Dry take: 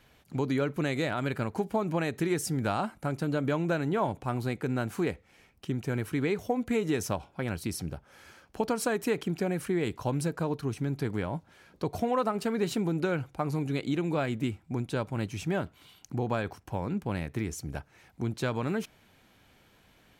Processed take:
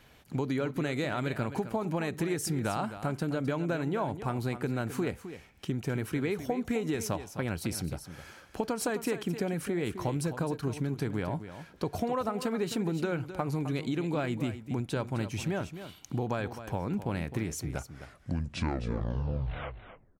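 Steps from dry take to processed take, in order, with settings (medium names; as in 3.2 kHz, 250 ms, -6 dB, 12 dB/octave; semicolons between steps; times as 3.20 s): tape stop on the ending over 2.58 s; compression 3:1, threshold -32 dBFS, peak gain reduction 7.5 dB; delay 260 ms -11.5 dB; trim +3 dB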